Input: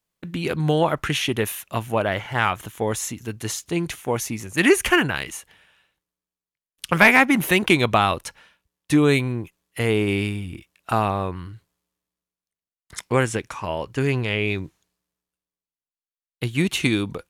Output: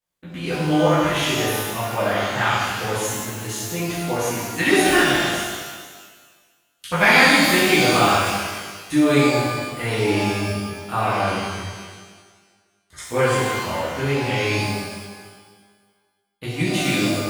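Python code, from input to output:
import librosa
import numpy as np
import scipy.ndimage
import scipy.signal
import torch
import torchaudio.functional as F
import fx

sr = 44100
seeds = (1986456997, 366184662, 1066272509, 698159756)

y = fx.rev_shimmer(x, sr, seeds[0], rt60_s=1.5, semitones=12, shimmer_db=-8, drr_db=-11.5)
y = y * 10.0 ** (-10.0 / 20.0)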